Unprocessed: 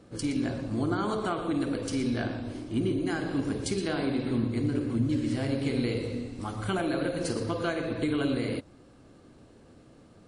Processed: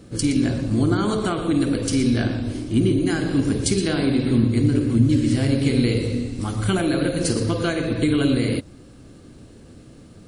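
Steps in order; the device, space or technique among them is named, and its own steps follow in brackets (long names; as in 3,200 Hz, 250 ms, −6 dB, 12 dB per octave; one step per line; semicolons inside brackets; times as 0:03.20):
smiley-face EQ (low-shelf EQ 190 Hz +4 dB; parametric band 860 Hz −6.5 dB 1.7 octaves; high-shelf EQ 7,500 Hz +6.5 dB)
level +9 dB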